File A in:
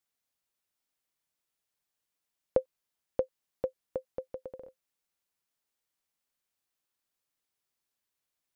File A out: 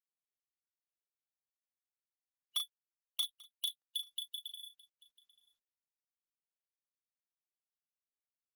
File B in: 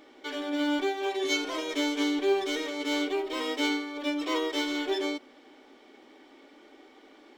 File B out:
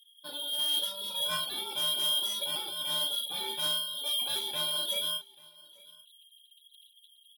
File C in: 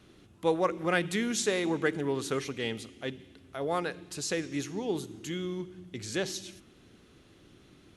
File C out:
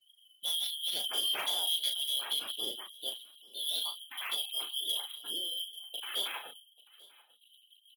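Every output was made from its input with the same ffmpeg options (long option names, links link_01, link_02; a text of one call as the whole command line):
ffmpeg -i in.wav -filter_complex "[0:a]afftfilt=real='real(if(lt(b,272),68*(eq(floor(b/68),0)*2+eq(floor(b/68),1)*3+eq(floor(b/68),2)*0+eq(floor(b/68),3)*1)+mod(b,68),b),0)':imag='imag(if(lt(b,272),68*(eq(floor(b/68),0)*2+eq(floor(b/68),1)*3+eq(floor(b/68),2)*0+eq(floor(b/68),3)*1)+mod(b,68),b),0)':win_size=2048:overlap=0.75,lowpass=frequency=3500:width=0.5412,lowpass=frequency=3500:width=1.3066,afftfilt=real='re*gte(hypot(re,im),0.00708)':imag='im*gte(hypot(re,im),0.00708)':win_size=1024:overlap=0.75,highpass=380,aresample=16000,asoftclip=type=hard:threshold=-26.5dB,aresample=44100,acrusher=samples=3:mix=1:aa=0.000001,asoftclip=type=tanh:threshold=-25dB,asplit=2[link_01][link_02];[link_02]adelay=36,volume=-6dB[link_03];[link_01][link_03]amix=inputs=2:normalize=0,asplit=2[link_04][link_05];[link_05]aecho=0:1:839:0.0668[link_06];[link_04][link_06]amix=inputs=2:normalize=0" -ar 48000 -c:a libopus -b:a 16k out.opus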